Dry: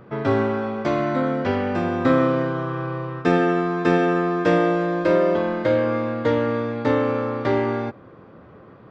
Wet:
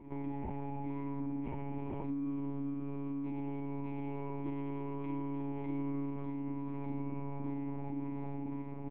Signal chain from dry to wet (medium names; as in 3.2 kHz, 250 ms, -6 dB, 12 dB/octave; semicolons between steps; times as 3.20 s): tilt shelf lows +3 dB; on a send: echo that smears into a reverb 500 ms, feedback 59%, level -10 dB; on the sum: peak limiter -17.5 dBFS, peak gain reduction 13.5 dB; vowel filter u; doubling 42 ms -3.5 dB; reverse echo 198 ms -20.5 dB; monotone LPC vocoder at 8 kHz 140 Hz; in parallel at -0.5 dB: compressor with a negative ratio -40 dBFS, ratio -1; on the sum: trim -7 dB